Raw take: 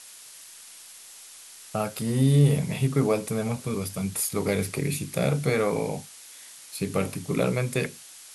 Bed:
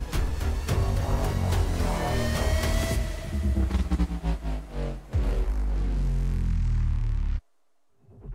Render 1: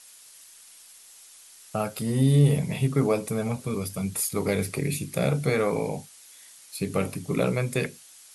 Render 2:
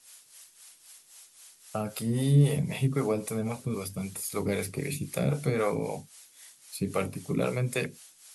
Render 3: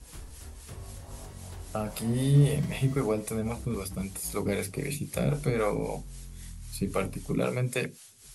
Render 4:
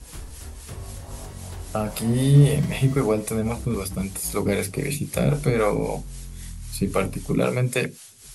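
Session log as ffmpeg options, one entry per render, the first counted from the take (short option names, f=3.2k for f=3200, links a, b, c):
-af "afftdn=nr=6:nf=-47"
-filter_complex "[0:a]acrossover=split=400[a][b];[a]aeval=exprs='val(0)*(1-0.7/2+0.7/2*cos(2*PI*3.8*n/s))':c=same[c];[b]aeval=exprs='val(0)*(1-0.7/2-0.7/2*cos(2*PI*3.8*n/s))':c=same[d];[c][d]amix=inputs=2:normalize=0"
-filter_complex "[1:a]volume=-18dB[a];[0:a][a]amix=inputs=2:normalize=0"
-af "volume=6.5dB"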